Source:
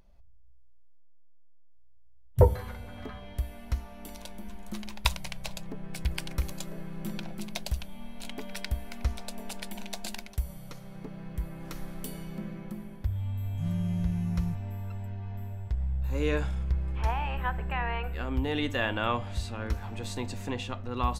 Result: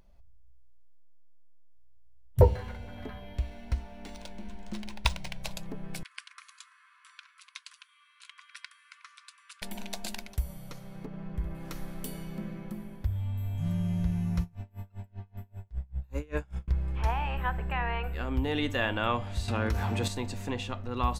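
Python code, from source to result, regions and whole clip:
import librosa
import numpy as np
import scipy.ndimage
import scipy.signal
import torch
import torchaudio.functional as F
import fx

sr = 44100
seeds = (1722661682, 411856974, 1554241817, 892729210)

y = fx.chain(x, sr, fx.notch(hz=1200.0, q=5.9),
    fx.resample_linear(factor=3), at=(2.41, 5.43))
y = fx.chain(y, sr, fx.brickwall_bandpass(low_hz=1000.0, high_hz=11000.0),
    fx.high_shelf(hz=2200.0, db=-10.5), at=(6.03, 9.62))
y = fx.chain(y, sr, fx.lowpass(hz=2300.0, slope=6),
    fx.room_flutter(wall_m=11.3, rt60_s=0.52), at=(11.06, 11.55))
y = fx.chain(y, sr, fx.dynamic_eq(hz=3900.0, q=2.7, threshold_db=-59.0, ratio=4.0, max_db=-7),
    fx.tremolo_db(hz=5.1, depth_db=30), at=(14.41, 16.68))
y = fx.chain(y, sr, fx.highpass(hz=47.0, slope=12),
    fx.env_flatten(amount_pct=70), at=(19.48, 20.08))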